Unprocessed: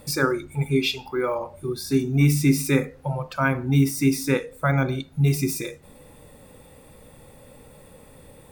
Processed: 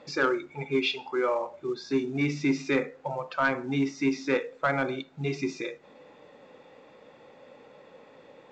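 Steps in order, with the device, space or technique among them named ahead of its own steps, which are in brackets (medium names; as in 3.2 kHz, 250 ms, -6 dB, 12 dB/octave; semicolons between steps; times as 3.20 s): telephone (band-pass 330–3300 Hz; saturation -14.5 dBFS, distortion -19 dB; µ-law 128 kbps 16 kHz)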